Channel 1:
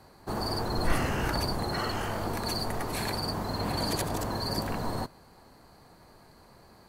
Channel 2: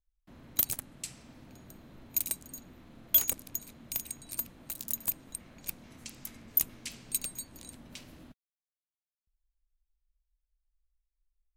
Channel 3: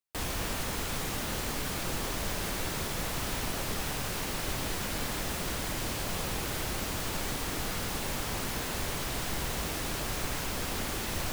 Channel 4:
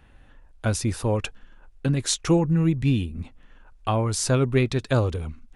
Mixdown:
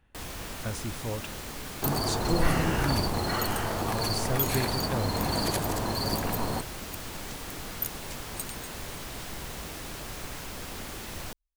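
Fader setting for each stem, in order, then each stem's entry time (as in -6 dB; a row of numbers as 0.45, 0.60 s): +1.5, -6.0, -5.0, -11.0 dB; 1.55, 1.25, 0.00, 0.00 s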